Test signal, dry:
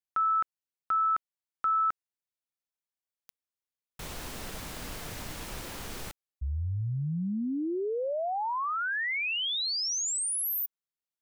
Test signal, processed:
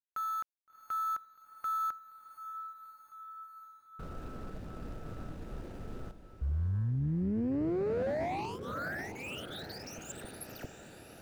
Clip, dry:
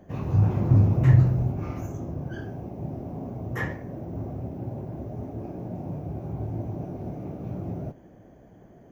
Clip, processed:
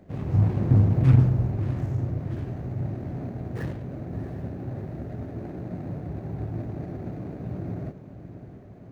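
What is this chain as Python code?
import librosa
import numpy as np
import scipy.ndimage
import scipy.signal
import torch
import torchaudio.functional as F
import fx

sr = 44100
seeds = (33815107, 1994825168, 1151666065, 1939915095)

y = scipy.signal.medfilt(x, 41)
y = fx.echo_diffused(y, sr, ms=698, feedback_pct=65, wet_db=-12.0)
y = fx.doppler_dist(y, sr, depth_ms=0.56)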